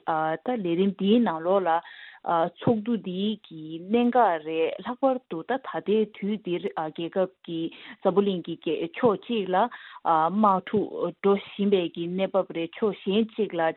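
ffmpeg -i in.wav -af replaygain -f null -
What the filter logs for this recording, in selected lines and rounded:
track_gain = +5.1 dB
track_peak = 0.289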